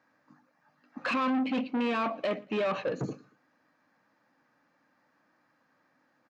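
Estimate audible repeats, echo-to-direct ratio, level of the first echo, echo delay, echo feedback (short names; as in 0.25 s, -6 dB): 2, -23.5 dB, -24.0 dB, 0.115 s, 38%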